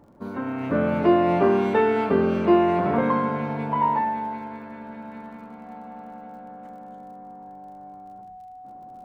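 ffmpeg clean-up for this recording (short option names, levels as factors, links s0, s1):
-af "adeclick=t=4,bandreject=f=740:w=30"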